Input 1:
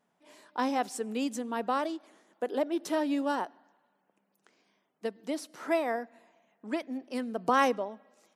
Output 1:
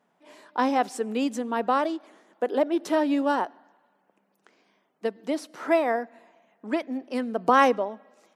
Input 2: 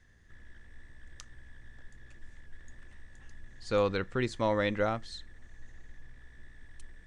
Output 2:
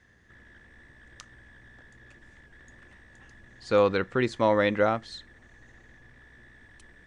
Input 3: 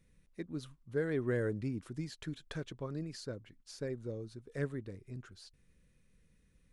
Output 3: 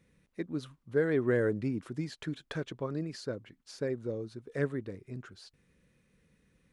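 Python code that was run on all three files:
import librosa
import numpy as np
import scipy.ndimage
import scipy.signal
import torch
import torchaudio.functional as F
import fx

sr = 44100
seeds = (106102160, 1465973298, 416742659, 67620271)

y = fx.highpass(x, sr, hz=180.0, slope=6)
y = fx.high_shelf(y, sr, hz=4100.0, db=-8.5)
y = y * 10.0 ** (7.0 / 20.0)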